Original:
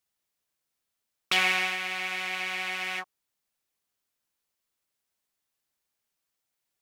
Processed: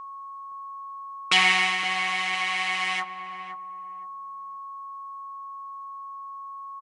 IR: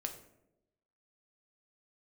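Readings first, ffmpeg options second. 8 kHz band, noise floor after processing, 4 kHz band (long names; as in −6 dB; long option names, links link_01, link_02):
+5.0 dB, −40 dBFS, +6.0 dB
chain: -filter_complex "[0:a]highpass=120,aecho=1:1:6.4:0.89,aeval=exprs='val(0)+0.0112*sin(2*PI*1100*n/s)':channel_layout=same,asplit=2[link_01][link_02];[link_02]adelay=517,lowpass=frequency=850:poles=1,volume=-7dB,asplit=2[link_03][link_04];[link_04]adelay=517,lowpass=frequency=850:poles=1,volume=0.28,asplit=2[link_05][link_06];[link_06]adelay=517,lowpass=frequency=850:poles=1,volume=0.28[link_07];[link_01][link_03][link_05][link_07]amix=inputs=4:normalize=0,aresample=22050,aresample=44100,volume=2.5dB"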